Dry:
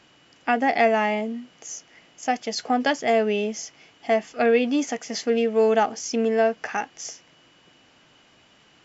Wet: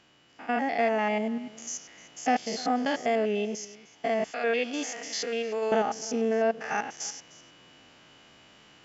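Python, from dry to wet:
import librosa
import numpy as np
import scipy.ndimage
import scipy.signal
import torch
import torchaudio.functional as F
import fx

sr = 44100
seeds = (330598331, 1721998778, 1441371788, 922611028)

y = fx.spec_steps(x, sr, hold_ms=100)
y = fx.highpass(y, sr, hz=1200.0, slope=6, at=(4.31, 5.72))
y = fx.rider(y, sr, range_db=4, speed_s=0.5)
y = y + 10.0 ** (-20.5 / 20.0) * np.pad(y, (int(304 * sr / 1000.0), 0))[:len(y)]
y = F.gain(torch.from_numpy(y), -1.5).numpy()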